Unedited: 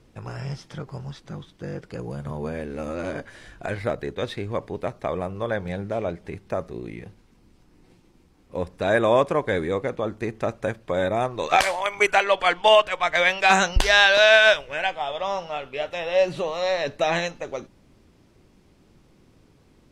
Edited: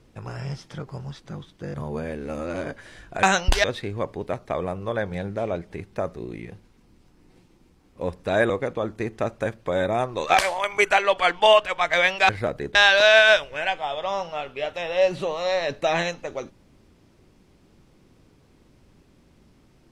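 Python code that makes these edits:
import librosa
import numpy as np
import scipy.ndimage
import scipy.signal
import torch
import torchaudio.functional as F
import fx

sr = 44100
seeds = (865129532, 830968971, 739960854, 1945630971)

y = fx.edit(x, sr, fx.cut(start_s=1.74, length_s=0.49),
    fx.swap(start_s=3.72, length_s=0.46, other_s=13.51, other_length_s=0.41),
    fx.cut(start_s=9.04, length_s=0.68), tone=tone)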